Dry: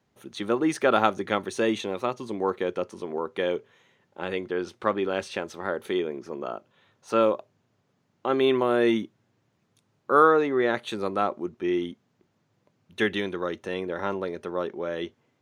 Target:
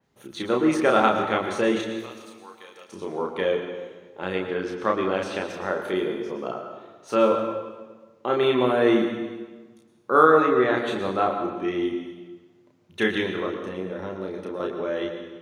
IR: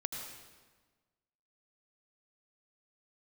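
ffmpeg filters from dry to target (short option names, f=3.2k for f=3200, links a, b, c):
-filter_complex "[0:a]asettb=1/sr,asplit=3[a][b][c];[a]atrim=end=1.814[d];[b]atrim=start=1.81:end=2.89,asetpts=PTS-STARTPTS,afade=t=in:d=0.004:c=qsin,afade=t=out:st=1.076:d=0.004:c=qsin,aderivative[e];[c]atrim=start=2.886[f];[d][e]acrossfade=d=0.004:c1=hsin:c2=qsin[g];[g][f]acrossfade=d=0.004:c1=qsin:c2=hsin,asettb=1/sr,asplit=3[h][i][j];[h]atrim=end=13.464[k];[i]atrim=start=13.46:end=14.6,asetpts=PTS-STARTPTS,afade=t=in:d=0.004:c=qsin,afade=t=out:st=1.136:d=0.004:c=qsin,acrossover=split=660|2300[l][m][n];[l]acompressor=threshold=-31dB:ratio=4[o];[m]acompressor=threshold=-47dB:ratio=4[p];[n]acompressor=threshold=-53dB:ratio=4[q];[o][p][q]amix=inputs=3:normalize=0[r];[j]atrim=start=14.596[s];[k][r]acrossfade=d=0.004:c1=hsin:c2=qsin[t];[t][s]acrossfade=d=0.004:c1=qsin:c2=hsin,asplit=2[u][v];[1:a]atrim=start_sample=2205,adelay=32[w];[v][w]afir=irnorm=-1:irlink=0,volume=-1.5dB[x];[u][x]amix=inputs=2:normalize=0,adynamicequalizer=threshold=0.00708:dfrequency=3900:dqfactor=0.7:tfrequency=3900:tqfactor=0.7:attack=5:release=100:ratio=0.375:range=2.5:mode=cutabove:tftype=highshelf"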